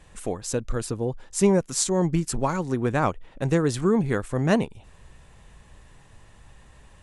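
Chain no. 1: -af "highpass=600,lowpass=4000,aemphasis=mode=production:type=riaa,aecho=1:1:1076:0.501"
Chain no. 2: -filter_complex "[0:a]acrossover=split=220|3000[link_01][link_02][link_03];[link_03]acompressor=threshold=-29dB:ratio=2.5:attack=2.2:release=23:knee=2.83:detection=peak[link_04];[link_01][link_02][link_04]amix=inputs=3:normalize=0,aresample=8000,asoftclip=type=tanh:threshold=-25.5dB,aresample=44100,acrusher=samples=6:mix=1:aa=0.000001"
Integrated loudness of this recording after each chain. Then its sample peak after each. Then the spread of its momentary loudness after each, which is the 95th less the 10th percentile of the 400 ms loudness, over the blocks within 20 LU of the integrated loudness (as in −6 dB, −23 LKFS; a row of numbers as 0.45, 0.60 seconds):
−30.5, −32.0 LKFS; −5.0, −23.5 dBFS; 12, 6 LU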